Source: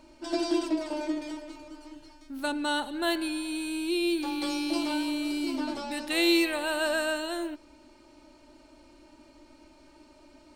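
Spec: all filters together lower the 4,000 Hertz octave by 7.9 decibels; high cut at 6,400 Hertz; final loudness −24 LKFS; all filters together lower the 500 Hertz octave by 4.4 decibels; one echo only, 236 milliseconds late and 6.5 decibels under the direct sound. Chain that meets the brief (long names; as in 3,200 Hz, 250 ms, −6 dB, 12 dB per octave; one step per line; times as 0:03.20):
low-pass filter 6,400 Hz
parametric band 500 Hz −7.5 dB
parametric band 4,000 Hz −9 dB
single-tap delay 236 ms −6.5 dB
level +8.5 dB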